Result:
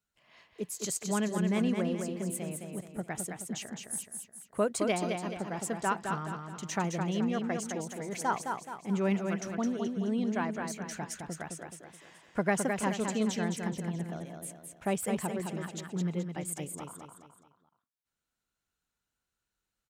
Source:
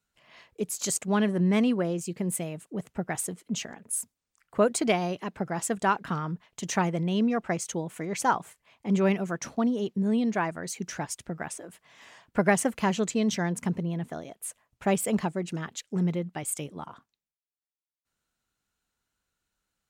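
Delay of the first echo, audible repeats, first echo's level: 213 ms, 4, -5.0 dB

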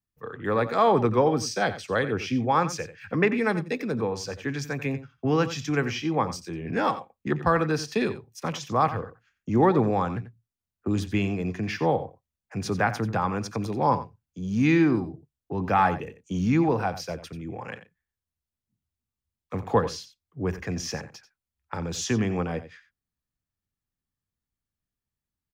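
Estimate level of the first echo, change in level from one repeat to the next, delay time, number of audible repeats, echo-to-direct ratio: -13.5 dB, no regular repeats, 89 ms, 1, -13.5 dB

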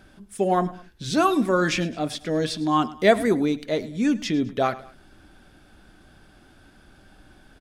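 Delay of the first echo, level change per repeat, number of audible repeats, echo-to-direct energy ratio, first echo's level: 106 ms, -7.5 dB, 2, -18.0 dB, -18.5 dB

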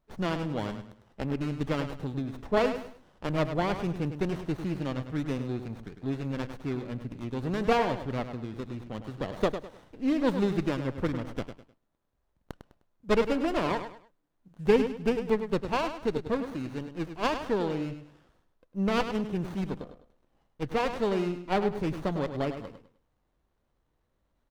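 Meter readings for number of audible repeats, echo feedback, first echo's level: 3, 30%, -9.5 dB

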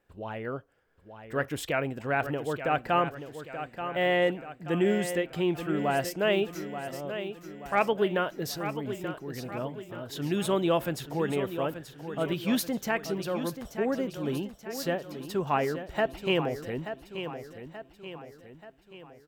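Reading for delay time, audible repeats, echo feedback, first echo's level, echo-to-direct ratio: 881 ms, 5, 49%, -10.0 dB, -9.0 dB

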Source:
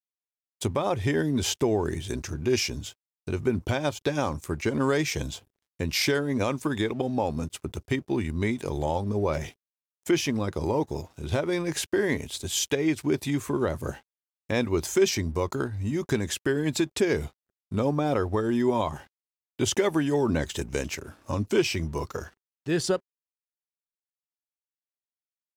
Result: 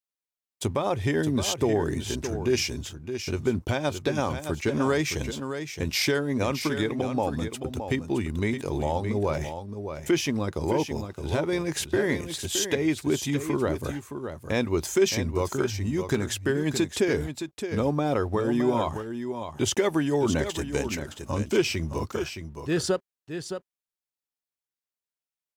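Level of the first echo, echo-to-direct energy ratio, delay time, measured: -8.5 dB, -8.5 dB, 617 ms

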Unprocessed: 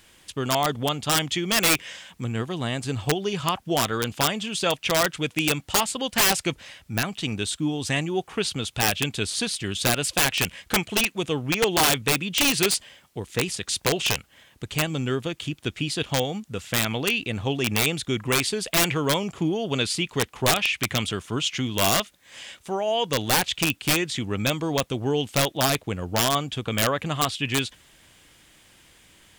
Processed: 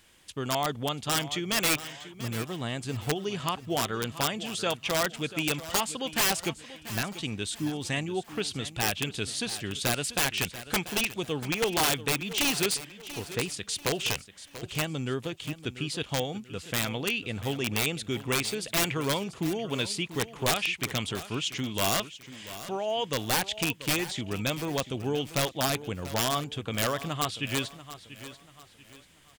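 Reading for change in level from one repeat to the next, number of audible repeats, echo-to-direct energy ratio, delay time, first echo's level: -9.0 dB, 3, -14.0 dB, 688 ms, -14.5 dB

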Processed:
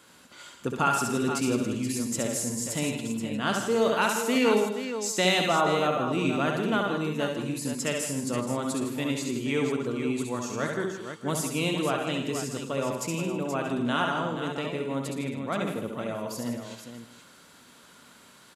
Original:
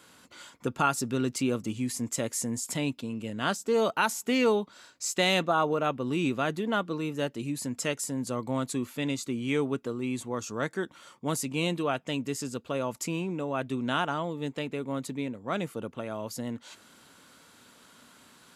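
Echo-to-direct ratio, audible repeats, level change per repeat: -1.0 dB, 9, no regular repeats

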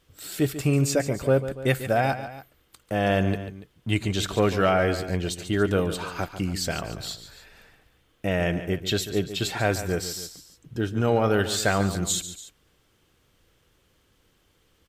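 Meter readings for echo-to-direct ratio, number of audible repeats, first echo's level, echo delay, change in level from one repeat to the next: -11.0 dB, 2, -12.0 dB, 143 ms, -5.0 dB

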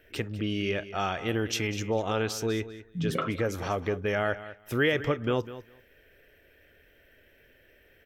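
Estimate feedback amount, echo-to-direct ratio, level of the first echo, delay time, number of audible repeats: 15%, -14.5 dB, -14.5 dB, 200 ms, 2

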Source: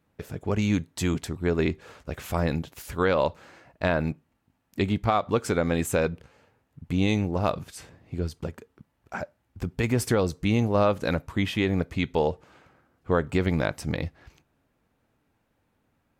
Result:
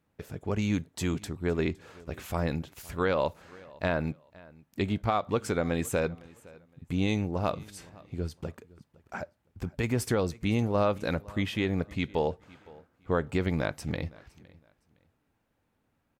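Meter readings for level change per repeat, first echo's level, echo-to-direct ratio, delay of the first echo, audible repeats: -11.5 dB, -23.0 dB, -22.5 dB, 512 ms, 2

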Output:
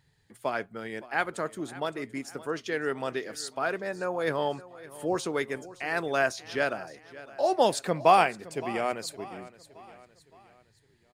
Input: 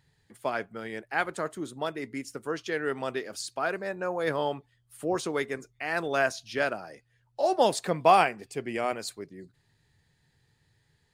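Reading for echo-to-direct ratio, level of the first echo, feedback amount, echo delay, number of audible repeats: -17.0 dB, -18.0 dB, 46%, 566 ms, 3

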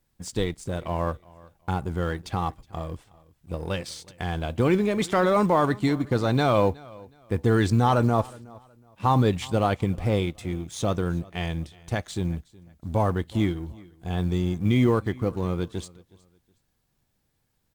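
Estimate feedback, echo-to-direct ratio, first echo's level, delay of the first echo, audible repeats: 27%, -22.5 dB, -23.0 dB, 368 ms, 2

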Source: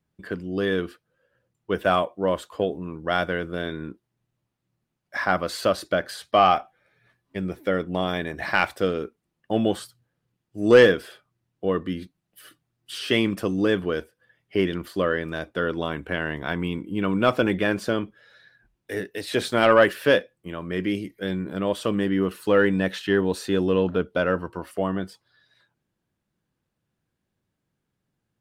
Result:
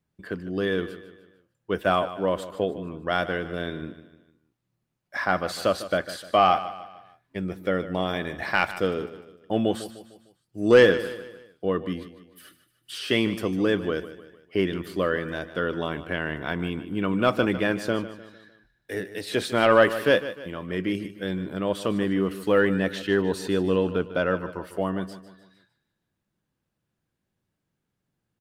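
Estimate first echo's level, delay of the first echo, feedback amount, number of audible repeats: -14.0 dB, 151 ms, 44%, 3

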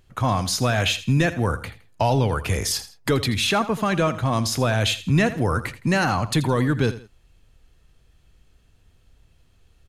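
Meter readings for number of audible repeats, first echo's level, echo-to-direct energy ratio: 2, -14.5 dB, -14.0 dB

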